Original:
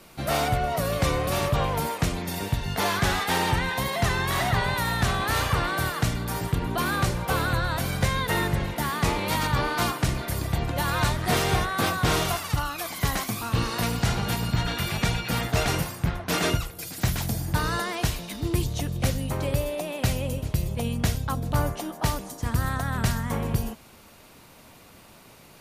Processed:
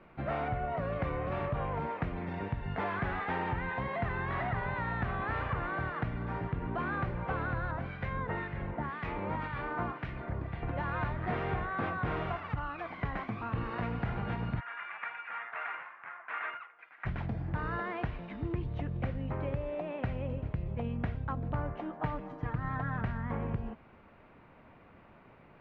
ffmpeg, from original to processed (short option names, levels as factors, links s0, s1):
-filter_complex "[0:a]asettb=1/sr,asplit=3[s0][s1][s2];[s0]atrim=end=7.714[s3];[s1]atrim=start=7.71:end=10.63,asetpts=PTS-STARTPTS,afade=t=in:d=0.004:c=qsin,afade=t=out:st=2.916:d=0.004:c=qsin,acrossover=split=1600[s4][s5];[s4]aeval=exprs='val(0)*(1-0.7/2+0.7/2*cos(2*PI*1.9*n/s))':c=same[s6];[s5]aeval=exprs='val(0)*(1-0.7/2-0.7/2*cos(2*PI*1.9*n/s))':c=same[s7];[s6][s7]amix=inputs=2:normalize=0[s8];[s2]atrim=start=10.626[s9];[s3][s8]acrossfade=d=0.004:c1=hsin:c2=qsin[s10];[s10][s9]acrossfade=d=0.004:c1=qsin:c2=hsin,asplit=3[s11][s12][s13];[s11]afade=t=out:st=14.59:d=0.02[s14];[s12]asuperpass=centerf=1600:order=4:qfactor=1.1,afade=t=in:st=14.59:d=0.02,afade=t=out:st=17.05:d=0.02[s15];[s13]afade=t=in:st=17.05:d=0.02[s16];[s14][s15][s16]amix=inputs=3:normalize=0,asettb=1/sr,asplit=3[s17][s18][s19];[s17]atrim=end=21.994[s20];[s18]atrim=start=21.99:end=23.01,asetpts=PTS-STARTPTS,afade=t=in:d=0.004:c=qsin,afade=t=out:st=1.016:d=0.004:c=qsin,aecho=1:1:6.6:0.7,atrim=end_sample=44982[s21];[s19]atrim=start=23.006[s22];[s20][s21]acrossfade=d=0.004:c1=hsin:c2=qsin[s23];[s23][s22]acrossfade=d=0.004:c1=qsin:c2=hsin,lowpass=f=2200:w=0.5412,lowpass=f=2200:w=1.3066,acompressor=threshold=0.0501:ratio=3,volume=0.562"